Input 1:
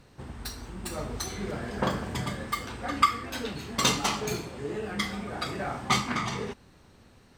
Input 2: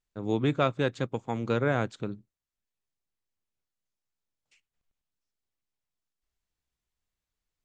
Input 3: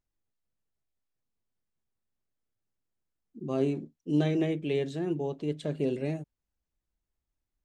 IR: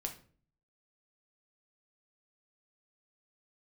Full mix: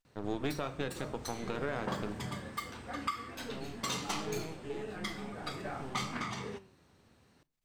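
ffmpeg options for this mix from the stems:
-filter_complex "[0:a]highpass=72,flanger=delay=9.3:depth=5.7:regen=87:speed=0.47:shape=triangular,adelay=50,volume=-4.5dB,asplit=2[a][b];[b]volume=-13.5dB[c];[1:a]equalizer=f=71:t=o:w=3:g=-9.5,volume=0dB,asplit=2[d][e];[e]volume=-9.5dB[f];[2:a]volume=-13dB[g];[d][g]amix=inputs=2:normalize=0,aeval=exprs='max(val(0),0)':c=same,acompressor=threshold=-33dB:ratio=6,volume=0dB[h];[3:a]atrim=start_sample=2205[i];[c][f]amix=inputs=2:normalize=0[j];[j][i]afir=irnorm=-1:irlink=0[k];[a][h][k]amix=inputs=3:normalize=0,alimiter=limit=-22.5dB:level=0:latency=1:release=172"

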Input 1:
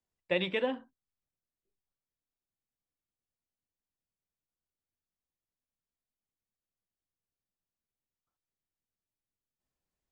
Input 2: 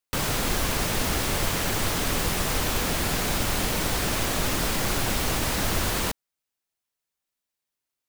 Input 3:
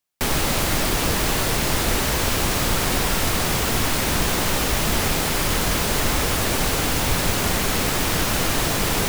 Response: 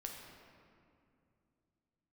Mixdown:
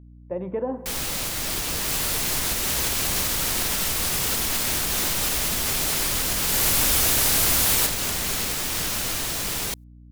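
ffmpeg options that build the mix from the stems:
-filter_complex "[0:a]lowpass=f=1k:w=0.5412,lowpass=f=1k:w=1.3066,dynaudnorm=f=150:g=7:m=12.5dB,volume=-1.5dB,asplit=2[a][b];[b]volume=-12dB[c];[1:a]equalizer=f=13k:w=0.71:g=7,adelay=1750,volume=-4dB,afade=t=in:st=6.39:d=0.29:silence=0.354813[d];[2:a]adelay=650,volume=-13dB[e];[a][e]amix=inputs=2:normalize=0,dynaudnorm=f=360:g=13:m=10.5dB,alimiter=limit=-21dB:level=0:latency=1:release=270,volume=0dB[f];[3:a]atrim=start_sample=2205[g];[c][g]afir=irnorm=-1:irlink=0[h];[d][f][h]amix=inputs=3:normalize=0,highshelf=f=2.4k:g=10.5,aeval=exprs='val(0)+0.00562*(sin(2*PI*60*n/s)+sin(2*PI*2*60*n/s)/2+sin(2*PI*3*60*n/s)/3+sin(2*PI*4*60*n/s)/4+sin(2*PI*5*60*n/s)/5)':c=same"

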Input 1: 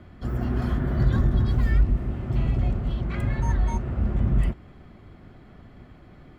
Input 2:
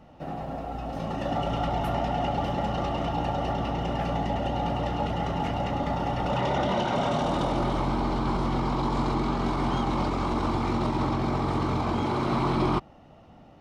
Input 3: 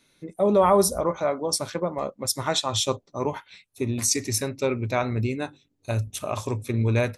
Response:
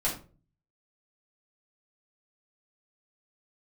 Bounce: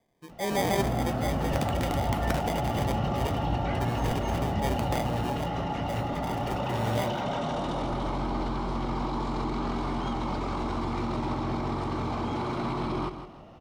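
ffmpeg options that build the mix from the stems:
-filter_complex "[0:a]aeval=exprs='(mod(4.22*val(0)+1,2)-1)/4.22':c=same,highpass=f=66:w=0.5412,highpass=f=66:w=1.3066,acompressor=threshold=-27dB:ratio=6,adelay=550,volume=-4dB,asplit=2[a][b];[b]volume=-9.5dB[c];[1:a]alimiter=level_in=1.5dB:limit=-24dB:level=0:latency=1:release=24,volume=-1.5dB,adelay=300,volume=2dB,asplit=2[d][e];[e]volume=-10.5dB[f];[2:a]acrusher=samples=32:mix=1:aa=0.000001,volume=-9.5dB,asplit=2[g][h];[h]volume=-18.5dB[i];[3:a]atrim=start_sample=2205[j];[c][j]afir=irnorm=-1:irlink=0[k];[f][i]amix=inputs=2:normalize=0,aecho=0:1:160|320|480|640|800:1|0.34|0.116|0.0393|0.0134[l];[a][d][g][k][l]amix=inputs=5:normalize=0"

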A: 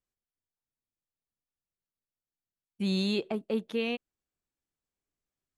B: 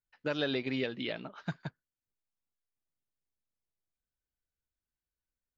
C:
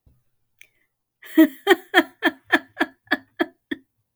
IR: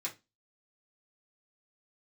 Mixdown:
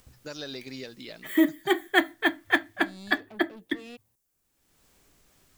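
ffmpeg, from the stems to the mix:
-filter_complex "[0:a]acompressor=mode=upward:threshold=-32dB:ratio=2.5,asoftclip=type=tanh:threshold=-35dB,volume=-4dB[a];[1:a]aexciter=amount=14.5:drive=4.9:freq=4.8k,volume=-6.5dB,asplit=2[b][c];[2:a]volume=2.5dB,asplit=2[d][e];[e]volume=-10dB[f];[c]apad=whole_len=183140[g];[d][g]sidechaincompress=threshold=-50dB:ratio=8:attack=34:release=258[h];[3:a]atrim=start_sample=2205[i];[f][i]afir=irnorm=-1:irlink=0[j];[a][b][h][j]amix=inputs=4:normalize=0,acompressor=threshold=-33dB:ratio=1.5"

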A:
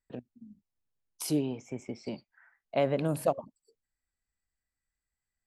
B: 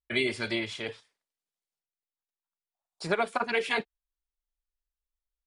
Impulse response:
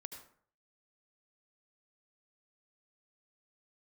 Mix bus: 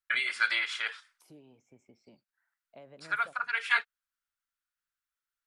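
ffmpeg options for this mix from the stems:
-filter_complex "[0:a]acrossover=split=550|2400[a][b][c];[a]acompressor=threshold=-35dB:ratio=4[d];[b]acompressor=threshold=-33dB:ratio=4[e];[c]acompressor=threshold=-46dB:ratio=4[f];[d][e][f]amix=inputs=3:normalize=0,volume=-19.5dB,asplit=2[g][h];[1:a]highpass=f=1.4k:t=q:w=4.6,volume=1dB[i];[h]apad=whole_len=241217[j];[i][j]sidechaincompress=threshold=-59dB:ratio=8:attack=11:release=607[k];[g][k]amix=inputs=2:normalize=0"

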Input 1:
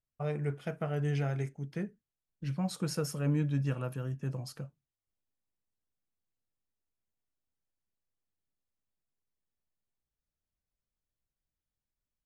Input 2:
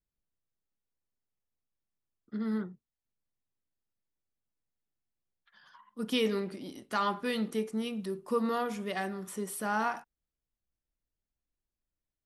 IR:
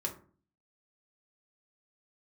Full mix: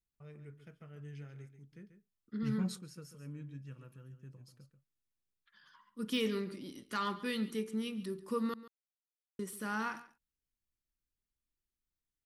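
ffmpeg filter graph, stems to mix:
-filter_complex "[0:a]agate=range=-33dB:threshold=-46dB:ratio=3:detection=peak,volume=-3.5dB,asplit=2[a][b];[b]volume=-23.5dB[c];[1:a]deesser=0.8,volume=-2.5dB,asplit=3[d][e][f];[d]atrim=end=8.54,asetpts=PTS-STARTPTS,afade=t=out:st=8.536:d=0.004:c=hsin[g];[e]atrim=start=8.54:end=9.39,asetpts=PTS-STARTPTS,volume=0[h];[f]atrim=start=9.39,asetpts=PTS-STARTPTS,afade=t=in:d=0.004:c=hsin[i];[g][h][i]concat=n=3:v=0:a=1,asplit=3[j][k][l];[k]volume=-17dB[m];[l]apad=whole_len=540593[n];[a][n]sidechaingate=range=-13dB:threshold=-51dB:ratio=16:detection=peak[o];[c][m]amix=inputs=2:normalize=0,aecho=0:1:139:1[p];[o][j][p]amix=inputs=3:normalize=0,equalizer=f=710:w=2.1:g=-14,asoftclip=type=hard:threshold=-24.5dB"

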